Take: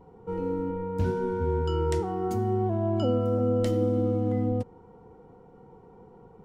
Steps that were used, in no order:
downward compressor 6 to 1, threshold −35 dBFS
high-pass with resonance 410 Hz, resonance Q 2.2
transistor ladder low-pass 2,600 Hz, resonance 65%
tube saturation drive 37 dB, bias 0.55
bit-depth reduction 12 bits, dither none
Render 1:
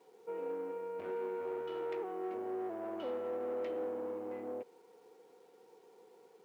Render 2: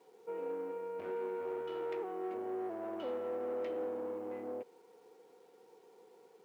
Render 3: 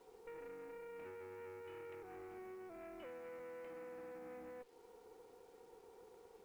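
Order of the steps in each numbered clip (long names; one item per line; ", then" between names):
transistor ladder low-pass, then tube saturation, then bit-depth reduction, then downward compressor, then high-pass with resonance
transistor ladder low-pass, then tube saturation, then downward compressor, then bit-depth reduction, then high-pass with resonance
high-pass with resonance, then downward compressor, then tube saturation, then transistor ladder low-pass, then bit-depth reduction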